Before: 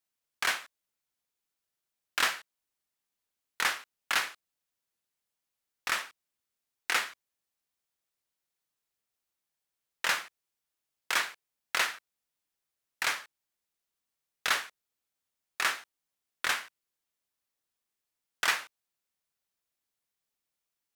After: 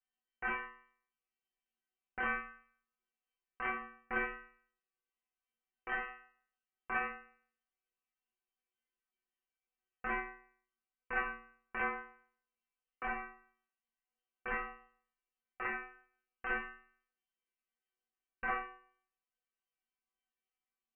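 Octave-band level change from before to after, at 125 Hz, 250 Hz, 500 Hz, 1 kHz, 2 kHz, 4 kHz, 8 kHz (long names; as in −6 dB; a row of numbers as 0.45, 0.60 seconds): can't be measured, +5.5 dB, −0.5 dB, −4.0 dB, −6.5 dB, −26.5 dB, below −40 dB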